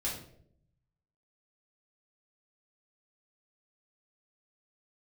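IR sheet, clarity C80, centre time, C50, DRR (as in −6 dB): 9.0 dB, 35 ms, 4.5 dB, −6.0 dB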